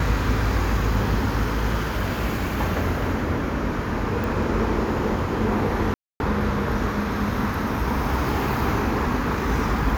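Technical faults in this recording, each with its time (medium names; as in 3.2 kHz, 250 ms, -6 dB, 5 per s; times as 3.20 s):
4.24 s: pop
5.94–6.20 s: dropout 261 ms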